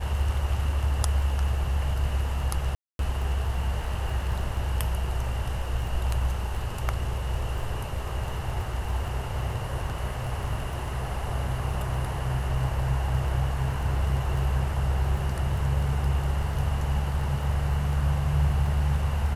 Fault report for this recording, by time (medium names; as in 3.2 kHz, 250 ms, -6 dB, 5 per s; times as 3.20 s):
crackle 10 per s -32 dBFS
2.75–2.99 s: dropout 242 ms